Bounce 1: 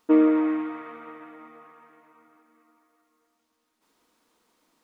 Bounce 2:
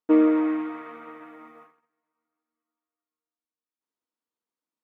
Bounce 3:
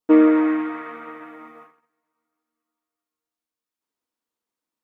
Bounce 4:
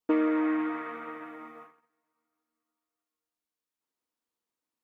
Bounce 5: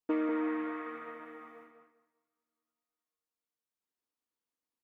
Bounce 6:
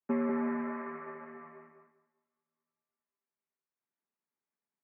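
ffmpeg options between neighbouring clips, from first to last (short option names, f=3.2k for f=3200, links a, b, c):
-af "agate=range=-26dB:threshold=-49dB:ratio=16:detection=peak,highpass=93"
-af "adynamicequalizer=threshold=0.00447:dfrequency=1700:dqfactor=2.1:tfrequency=1700:tqfactor=2.1:attack=5:release=100:ratio=0.375:range=2.5:mode=boostabove:tftype=bell,volume=4.5dB"
-filter_complex "[0:a]acrossover=split=650|1600[a][b][c];[a]acompressor=threshold=-23dB:ratio=4[d];[b]acompressor=threshold=-33dB:ratio=4[e];[c]acompressor=threshold=-39dB:ratio=4[f];[d][e][f]amix=inputs=3:normalize=0,volume=-3dB"
-filter_complex "[0:a]asplit=2[a][b];[b]adelay=197,lowpass=f=2.7k:p=1,volume=-5.5dB,asplit=2[c][d];[d]adelay=197,lowpass=f=2.7k:p=1,volume=0.22,asplit=2[e][f];[f]adelay=197,lowpass=f=2.7k:p=1,volume=0.22[g];[a][c][e][g]amix=inputs=4:normalize=0,volume=-6dB"
-af "adynamicequalizer=threshold=0.00224:dfrequency=630:dqfactor=2.9:tfrequency=630:tqfactor=2.9:attack=5:release=100:ratio=0.375:range=3:mode=boostabove:tftype=bell,highpass=f=230:t=q:w=0.5412,highpass=f=230:t=q:w=1.307,lowpass=f=2.4k:t=q:w=0.5176,lowpass=f=2.4k:t=q:w=0.7071,lowpass=f=2.4k:t=q:w=1.932,afreqshift=-73"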